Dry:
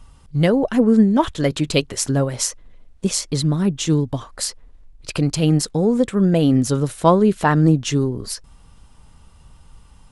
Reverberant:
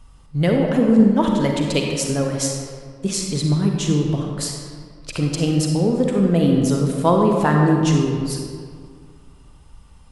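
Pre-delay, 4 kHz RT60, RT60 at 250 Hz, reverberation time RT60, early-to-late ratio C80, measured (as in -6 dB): 37 ms, 1.1 s, 2.2 s, 2.0 s, 3.0 dB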